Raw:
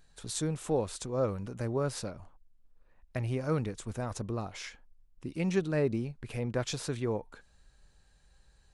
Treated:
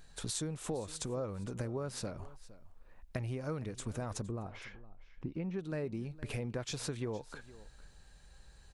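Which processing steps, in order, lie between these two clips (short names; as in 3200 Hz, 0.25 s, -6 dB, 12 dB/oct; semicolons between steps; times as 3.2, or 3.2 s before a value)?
compressor 6:1, threshold -41 dBFS, peak gain reduction 17 dB; 4.27–5.59 tape spacing loss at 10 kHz 35 dB; echo 0.462 s -18.5 dB; gain +5.5 dB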